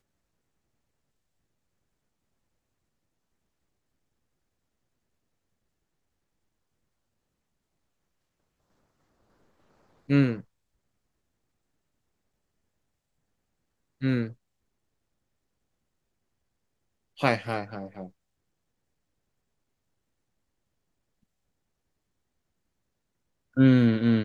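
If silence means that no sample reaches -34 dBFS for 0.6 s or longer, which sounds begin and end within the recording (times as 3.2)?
10.09–10.4
14.02–14.28
17.2–18.05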